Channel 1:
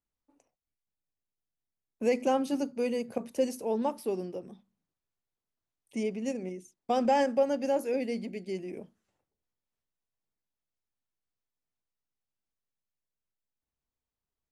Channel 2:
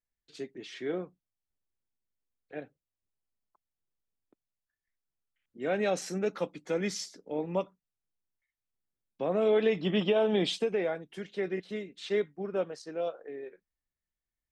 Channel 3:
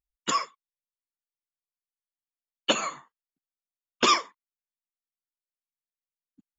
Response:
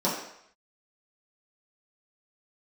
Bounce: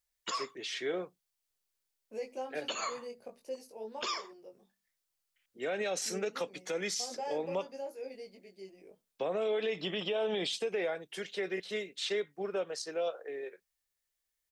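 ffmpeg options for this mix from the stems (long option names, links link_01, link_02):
-filter_complex "[0:a]flanger=delay=18.5:depth=2.2:speed=0.52,adelay=100,volume=-10.5dB[link_01];[1:a]highshelf=frequency=2100:gain=11,acrossover=split=340[link_02][link_03];[link_03]acompressor=threshold=-32dB:ratio=1.5[link_04];[link_02][link_04]amix=inputs=2:normalize=0,volume=0dB[link_05];[2:a]volume=0dB[link_06];[link_01][link_06]amix=inputs=2:normalize=0,equalizer=frequency=4600:width_type=o:width=0.44:gain=7,acompressor=threshold=-37dB:ratio=1.5,volume=0dB[link_07];[link_05][link_07]amix=inputs=2:normalize=0,lowshelf=frequency=340:width_type=q:width=1.5:gain=-6,alimiter=level_in=1dB:limit=-24dB:level=0:latency=1:release=123,volume=-1dB"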